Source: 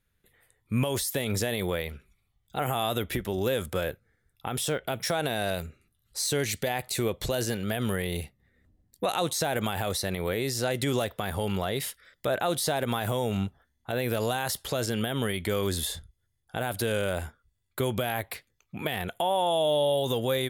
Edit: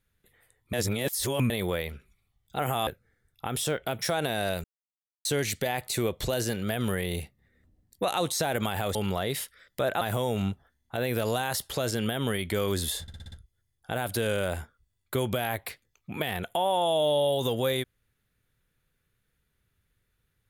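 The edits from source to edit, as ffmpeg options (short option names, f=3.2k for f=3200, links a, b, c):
-filter_complex "[0:a]asplit=13[a][b][c][d][e][f][g][h][i][j][k][l][m];[a]atrim=end=0.732[n];[b]atrim=start=0.728:end=1.502,asetpts=PTS-STARTPTS,areverse[o];[c]atrim=start=1.498:end=2.872[p];[d]atrim=start=3.878:end=5.65,asetpts=PTS-STARTPTS,afade=t=out:st=1.768:d=0.004:c=hsin[q];[e]atrim=start=5.65:end=6.26,asetpts=PTS-STARTPTS,volume=0[r];[f]atrim=start=6.26:end=9.962,asetpts=PTS-STARTPTS,afade=t=in:d=0.004:c=hsin[s];[g]atrim=start=11.408:end=12.472[t];[h]atrim=start=12.958:end=16.032[u];[i]atrim=start=15.968:end=16.032[v];[j]atrim=start=15.968:end=16.032[w];[k]atrim=start=15.968:end=16.032[x];[l]atrim=start=15.968:end=16.032[y];[m]atrim=start=15.968[z];[n][o]acrossfade=d=0.004:c1=hsin:c2=hsin[aa];[aa][p]acrossfade=d=0.004:c1=hsin:c2=hsin[ab];[q][r][s]concat=n=3:v=0:a=1[ac];[ab][ac]acrossfade=d=0.004:c1=hsin:c2=hsin[ad];[ad][t]acrossfade=d=0.004:c1=hsin:c2=hsin[ae];[ae][u]acrossfade=d=0.004:c1=hsin:c2=hsin[af];[af][v]acrossfade=d=0.004:c1=hsin:c2=hsin[ag];[ag][w]acrossfade=d=0.004:c1=hsin:c2=hsin[ah];[ah][x]acrossfade=d=0.004:c1=hsin:c2=hsin[ai];[ai][y]acrossfade=d=0.004:c1=hsin:c2=hsin[aj];[aj][z]acrossfade=d=0.004:c1=hsin:c2=hsin"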